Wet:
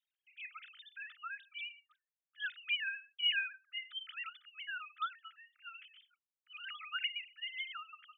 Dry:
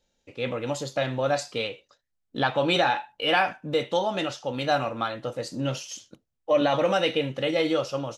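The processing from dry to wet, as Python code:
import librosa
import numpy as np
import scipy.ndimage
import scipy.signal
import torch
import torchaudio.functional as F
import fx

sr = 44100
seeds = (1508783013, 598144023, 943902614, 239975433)

y = fx.sine_speech(x, sr)
y = fx.brickwall_highpass(y, sr, low_hz=1200.0)
y = fx.tilt_eq(y, sr, slope=3.5)
y = F.gain(torch.from_numpy(y), -7.5).numpy()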